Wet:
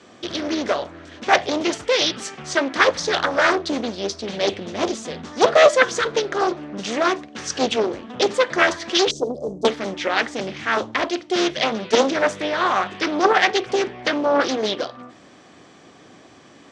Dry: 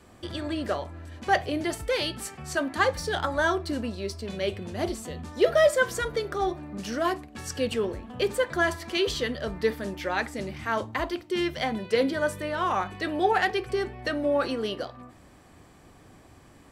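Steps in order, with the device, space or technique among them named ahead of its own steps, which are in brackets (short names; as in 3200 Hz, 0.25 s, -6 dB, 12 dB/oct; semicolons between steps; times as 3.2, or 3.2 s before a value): 9.11–9.65 Chebyshev band-stop 530–7300 Hz, order 3; full-range speaker at full volume (Doppler distortion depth 0.87 ms; speaker cabinet 210–7000 Hz, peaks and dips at 900 Hz -4 dB, 3400 Hz +5 dB, 6000 Hz +5 dB); gain +8 dB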